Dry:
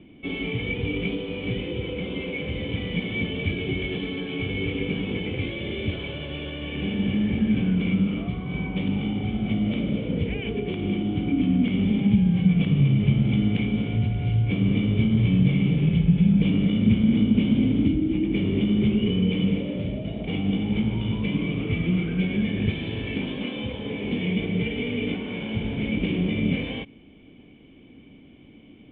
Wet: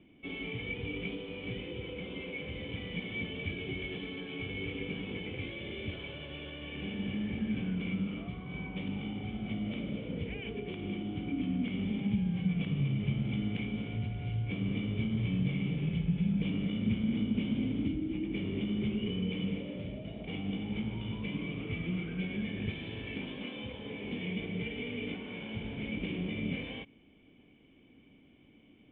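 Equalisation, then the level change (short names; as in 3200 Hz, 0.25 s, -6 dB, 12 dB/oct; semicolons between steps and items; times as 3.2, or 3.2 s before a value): air absorption 130 m; tilt shelf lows -3 dB, about 690 Hz; -9.0 dB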